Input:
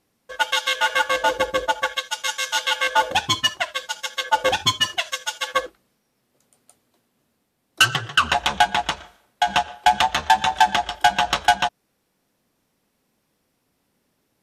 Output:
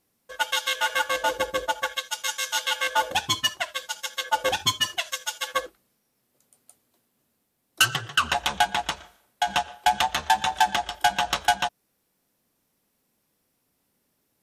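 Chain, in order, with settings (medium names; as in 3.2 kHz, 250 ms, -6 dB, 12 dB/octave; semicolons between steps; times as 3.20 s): treble shelf 8.8 kHz +11 dB; trim -5 dB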